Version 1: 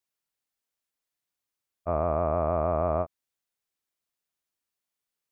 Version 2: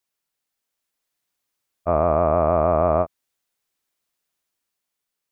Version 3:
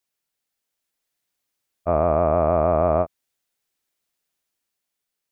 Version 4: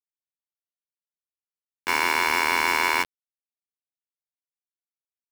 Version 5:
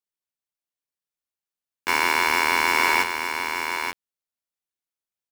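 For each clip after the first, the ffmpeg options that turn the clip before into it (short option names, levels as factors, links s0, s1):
-af "equalizer=f=82:w=1.1:g=-3,dynaudnorm=f=200:g=9:m=1.41,volume=1.78"
-af "equalizer=f=1100:w=2.5:g=-3"
-af "aeval=exprs='val(0)*sin(2*PI*1600*n/s)':c=same,aeval=exprs='val(0)*gte(abs(val(0)),0.075)':c=same"
-af "aecho=1:1:881:0.473,volume=1.19"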